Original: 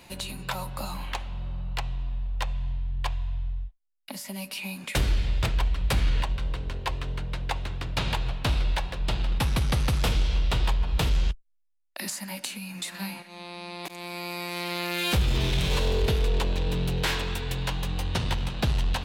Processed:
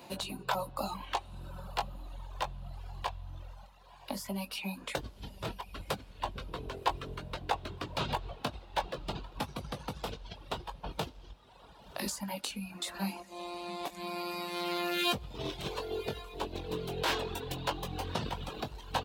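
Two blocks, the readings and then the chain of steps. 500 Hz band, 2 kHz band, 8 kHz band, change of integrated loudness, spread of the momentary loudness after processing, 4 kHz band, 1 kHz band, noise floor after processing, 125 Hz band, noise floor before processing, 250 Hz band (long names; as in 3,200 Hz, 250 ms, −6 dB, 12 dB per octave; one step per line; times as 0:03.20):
−3.5 dB, −7.0 dB, −7.5 dB, −8.5 dB, 12 LU, −6.5 dB, −1.0 dB, −55 dBFS, −14.5 dB, −52 dBFS, −5.5 dB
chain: parametric band 2,000 Hz −9.5 dB 1.1 octaves
compressor whose output falls as the input rises −28 dBFS, ratio −1
double-tracking delay 20 ms −7.5 dB
feedback delay with all-pass diffusion 1,079 ms, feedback 48%, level −13 dB
reverb reduction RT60 1.5 s
high-pass filter 390 Hz 6 dB per octave
parametric band 10,000 Hz −11.5 dB 2.3 octaves
level +3 dB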